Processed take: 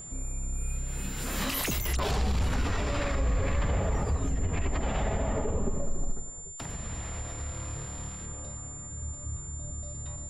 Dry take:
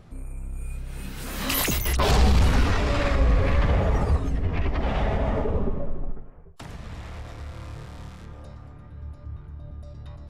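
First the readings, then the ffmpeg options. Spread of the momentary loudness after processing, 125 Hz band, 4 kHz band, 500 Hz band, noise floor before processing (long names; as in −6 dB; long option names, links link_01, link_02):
9 LU, −6.0 dB, −6.5 dB, −5.5 dB, −45 dBFS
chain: -af "aeval=exprs='val(0)+0.00891*sin(2*PI*7200*n/s)':channel_layout=same,alimiter=limit=-20.5dB:level=0:latency=1:release=111"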